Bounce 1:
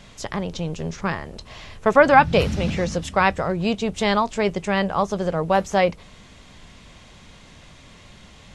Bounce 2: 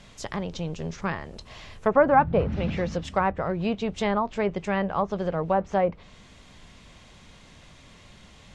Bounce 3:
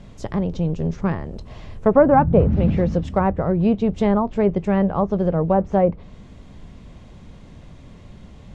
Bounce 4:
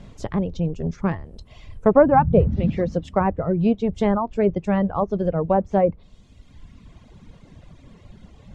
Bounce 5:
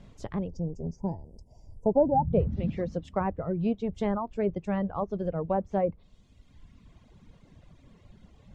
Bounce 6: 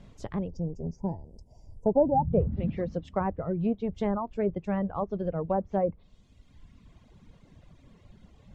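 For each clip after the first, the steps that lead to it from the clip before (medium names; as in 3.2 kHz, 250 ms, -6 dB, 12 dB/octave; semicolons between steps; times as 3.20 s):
low-pass that closes with the level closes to 1.2 kHz, closed at -14.5 dBFS; trim -4 dB
tilt shelf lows +8.5 dB, about 840 Hz; trim +2.5 dB
reverb removal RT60 1.7 s
time-frequency box 0.48–2.32 s, 1–4.6 kHz -29 dB; trim -8.5 dB
low-pass that closes with the level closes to 1.5 kHz, closed at -22 dBFS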